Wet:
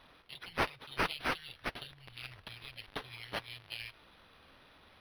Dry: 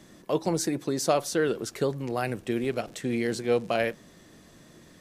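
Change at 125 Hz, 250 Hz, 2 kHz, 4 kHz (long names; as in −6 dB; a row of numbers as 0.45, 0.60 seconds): −15.0, −19.0, −3.5, −3.0 decibels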